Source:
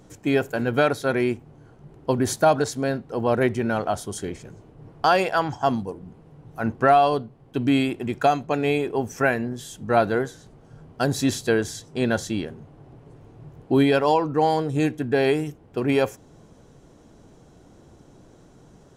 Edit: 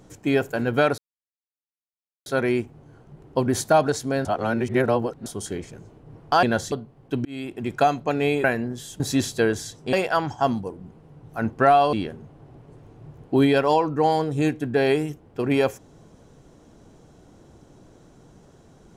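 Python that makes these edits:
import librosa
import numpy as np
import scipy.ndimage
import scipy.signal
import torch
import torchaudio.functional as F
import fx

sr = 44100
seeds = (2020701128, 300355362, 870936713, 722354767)

y = fx.edit(x, sr, fx.insert_silence(at_s=0.98, length_s=1.28),
    fx.reverse_span(start_s=2.97, length_s=1.01),
    fx.swap(start_s=5.15, length_s=2.0, other_s=12.02, other_length_s=0.29),
    fx.fade_in_span(start_s=7.68, length_s=0.46),
    fx.cut(start_s=8.87, length_s=0.38),
    fx.cut(start_s=9.81, length_s=1.28), tone=tone)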